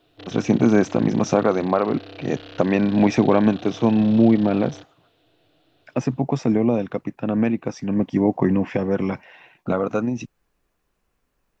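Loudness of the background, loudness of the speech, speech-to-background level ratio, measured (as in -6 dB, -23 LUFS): -40.5 LUFS, -21.0 LUFS, 19.5 dB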